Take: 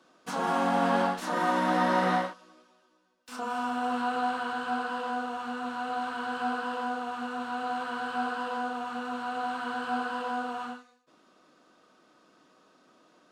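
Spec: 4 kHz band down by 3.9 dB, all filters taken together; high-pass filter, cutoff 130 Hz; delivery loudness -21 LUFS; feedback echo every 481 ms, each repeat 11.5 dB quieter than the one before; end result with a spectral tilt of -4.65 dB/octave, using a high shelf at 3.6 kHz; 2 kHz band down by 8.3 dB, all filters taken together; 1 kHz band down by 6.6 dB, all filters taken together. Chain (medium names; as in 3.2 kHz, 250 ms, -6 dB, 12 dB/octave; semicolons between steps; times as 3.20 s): high-pass 130 Hz; peaking EQ 1 kHz -8 dB; peaking EQ 2 kHz -9 dB; treble shelf 3.6 kHz +8.5 dB; peaking EQ 4 kHz -6.5 dB; feedback delay 481 ms, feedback 27%, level -11.5 dB; trim +14 dB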